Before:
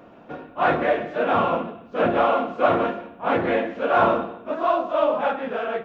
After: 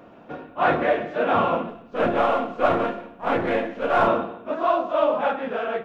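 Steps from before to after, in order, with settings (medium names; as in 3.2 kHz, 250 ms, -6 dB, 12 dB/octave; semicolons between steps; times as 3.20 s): 1.69–4.08 s: partial rectifier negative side -3 dB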